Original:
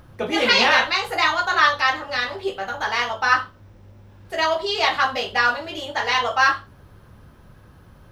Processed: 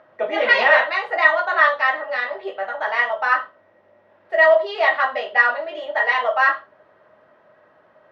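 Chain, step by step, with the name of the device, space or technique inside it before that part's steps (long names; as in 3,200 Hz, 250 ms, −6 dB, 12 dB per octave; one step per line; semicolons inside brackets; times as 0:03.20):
tin-can telephone (band-pass filter 480–2,100 Hz; hollow resonant body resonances 620/1,900 Hz, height 17 dB, ringing for 85 ms)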